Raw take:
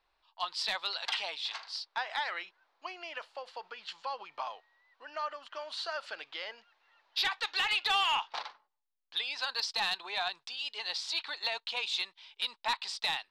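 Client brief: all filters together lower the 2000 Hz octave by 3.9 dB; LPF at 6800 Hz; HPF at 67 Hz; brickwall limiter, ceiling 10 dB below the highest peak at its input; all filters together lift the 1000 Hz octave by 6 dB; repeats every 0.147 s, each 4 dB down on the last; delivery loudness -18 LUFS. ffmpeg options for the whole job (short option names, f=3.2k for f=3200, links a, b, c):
-af "highpass=67,lowpass=6.8k,equalizer=f=1k:t=o:g=9,equalizer=f=2k:t=o:g=-8,alimiter=level_in=3dB:limit=-24dB:level=0:latency=1,volume=-3dB,aecho=1:1:147|294|441|588|735|882|1029|1176|1323:0.631|0.398|0.25|0.158|0.0994|0.0626|0.0394|0.0249|0.0157,volume=18dB"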